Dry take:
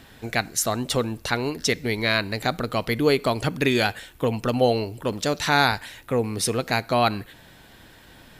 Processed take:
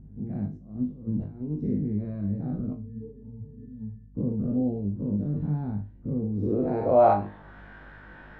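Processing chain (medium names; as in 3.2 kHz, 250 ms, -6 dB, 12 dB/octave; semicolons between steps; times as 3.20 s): every event in the spectrogram widened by 120 ms; 0.57–1.52 s: compressor with a negative ratio -25 dBFS, ratio -0.5; 2.73–4.15 s: pitch-class resonator A, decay 0.47 s; on a send: flutter echo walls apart 3.4 m, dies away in 0.25 s; on the sum: low-pass sweep 200 Hz -> 1.5 kHz, 6.24–7.60 s; hum 50 Hz, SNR 23 dB; trim -7 dB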